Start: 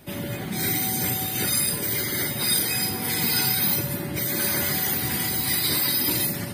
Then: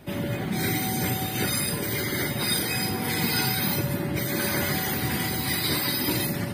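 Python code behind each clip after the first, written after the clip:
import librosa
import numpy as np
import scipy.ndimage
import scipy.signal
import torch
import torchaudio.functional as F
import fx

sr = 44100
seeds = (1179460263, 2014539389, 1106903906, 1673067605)

y = fx.high_shelf(x, sr, hz=4400.0, db=-9.5)
y = y * 10.0 ** (2.5 / 20.0)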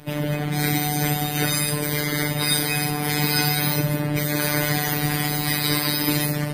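y = fx.robotise(x, sr, hz=148.0)
y = y * 10.0 ** (6.0 / 20.0)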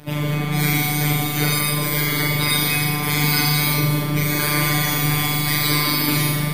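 y = fx.room_flutter(x, sr, wall_m=6.8, rt60_s=1.2)
y = y * 10.0 ** (1.0 / 20.0)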